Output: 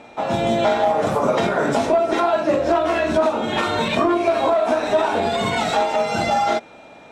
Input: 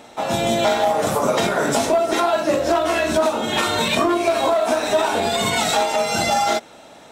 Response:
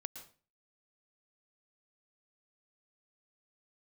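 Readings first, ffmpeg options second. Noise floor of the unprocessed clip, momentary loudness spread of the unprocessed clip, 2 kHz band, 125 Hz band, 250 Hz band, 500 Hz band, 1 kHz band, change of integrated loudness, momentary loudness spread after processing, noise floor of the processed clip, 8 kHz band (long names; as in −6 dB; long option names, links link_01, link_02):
−44 dBFS, 2 LU, −1.5 dB, +1.0 dB, +1.0 dB, +0.5 dB, 0.0 dB, −0.5 dB, 3 LU, −44 dBFS, −10.5 dB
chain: -af "aeval=exprs='val(0)+0.00447*sin(2*PI*2400*n/s)':channel_layout=same,aemphasis=mode=reproduction:type=75fm"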